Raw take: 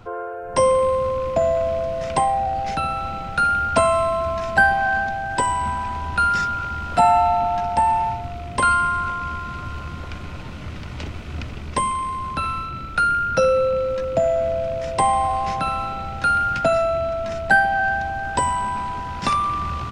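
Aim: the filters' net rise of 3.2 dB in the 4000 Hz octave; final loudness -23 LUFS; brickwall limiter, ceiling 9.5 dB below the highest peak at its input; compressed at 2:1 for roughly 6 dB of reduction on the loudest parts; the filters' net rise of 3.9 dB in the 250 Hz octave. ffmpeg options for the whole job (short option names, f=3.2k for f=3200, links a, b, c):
-af "equalizer=f=250:t=o:g=5,equalizer=f=4k:t=o:g=4,acompressor=threshold=-21dB:ratio=2,volume=1.5dB,alimiter=limit=-14dB:level=0:latency=1"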